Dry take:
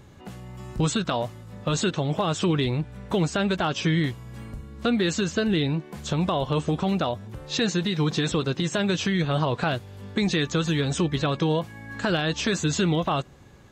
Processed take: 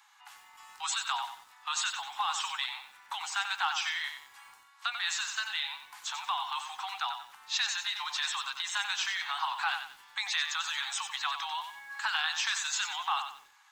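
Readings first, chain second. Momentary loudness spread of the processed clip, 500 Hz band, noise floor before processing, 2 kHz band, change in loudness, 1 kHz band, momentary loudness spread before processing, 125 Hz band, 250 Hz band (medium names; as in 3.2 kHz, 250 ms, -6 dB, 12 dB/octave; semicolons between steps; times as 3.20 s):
10 LU, -34.5 dB, -47 dBFS, -1.5 dB, -7.0 dB, -3.0 dB, 10 LU, under -40 dB, under -40 dB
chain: steep high-pass 800 Hz 96 dB/octave; bit-crushed delay 92 ms, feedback 35%, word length 9-bit, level -7.5 dB; trim -2 dB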